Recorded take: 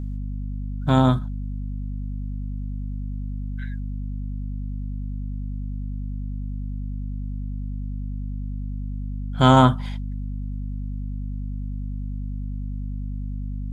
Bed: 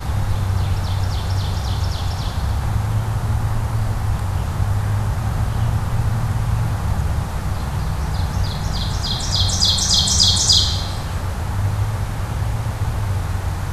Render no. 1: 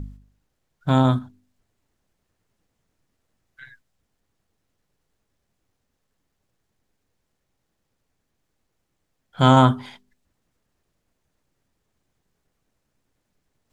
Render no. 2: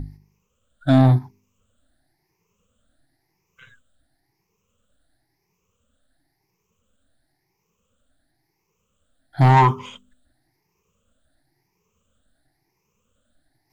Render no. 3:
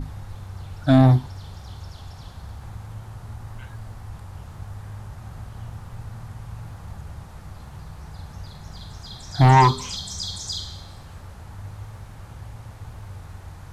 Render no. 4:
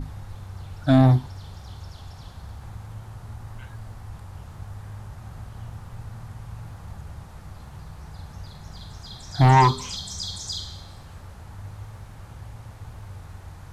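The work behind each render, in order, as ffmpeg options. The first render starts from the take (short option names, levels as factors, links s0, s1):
-af "bandreject=f=50:t=h:w=4,bandreject=f=100:t=h:w=4,bandreject=f=150:t=h:w=4,bandreject=f=200:t=h:w=4,bandreject=f=250:t=h:w=4,bandreject=f=300:t=h:w=4,bandreject=f=350:t=h:w=4,bandreject=f=400:t=h:w=4"
-af "afftfilt=real='re*pow(10,21/40*sin(2*PI*(0.78*log(max(b,1)*sr/1024/100)/log(2)-(0.96)*(pts-256)/sr)))':imag='im*pow(10,21/40*sin(2*PI*(0.78*log(max(b,1)*sr/1024/100)/log(2)-(0.96)*(pts-256)/sr)))':win_size=1024:overlap=0.75,asoftclip=type=tanh:threshold=0.398"
-filter_complex "[1:a]volume=0.141[s0];[0:a][s0]amix=inputs=2:normalize=0"
-af "volume=0.841"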